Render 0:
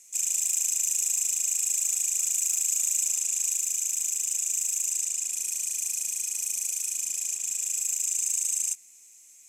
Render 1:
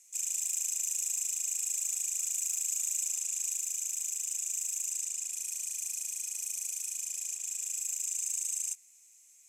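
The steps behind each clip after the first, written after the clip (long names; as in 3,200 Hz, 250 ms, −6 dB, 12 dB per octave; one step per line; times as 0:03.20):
low-shelf EQ 250 Hz −9 dB
level −6.5 dB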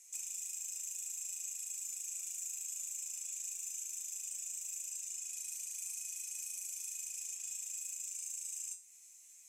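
downward compressor 6 to 1, threshold −41 dBFS, peak gain reduction 12 dB
tuned comb filter 180 Hz, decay 0.36 s, harmonics all, mix 80%
level +11 dB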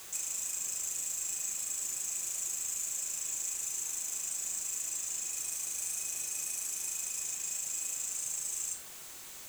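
background noise white −55 dBFS
convolution reverb RT60 0.80 s, pre-delay 3 ms, DRR 11.5 dB
level +6 dB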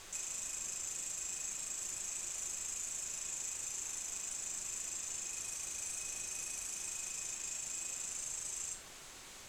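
background noise brown −64 dBFS
high-frequency loss of the air 58 metres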